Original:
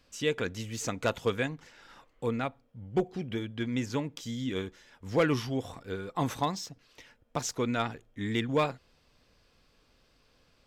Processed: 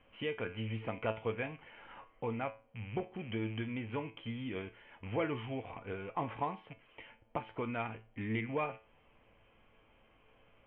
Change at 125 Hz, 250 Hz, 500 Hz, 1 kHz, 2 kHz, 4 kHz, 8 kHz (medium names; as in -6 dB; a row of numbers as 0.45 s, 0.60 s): -6.0 dB, -7.5 dB, -7.0 dB, -5.0 dB, -5.5 dB, -10.5 dB, under -40 dB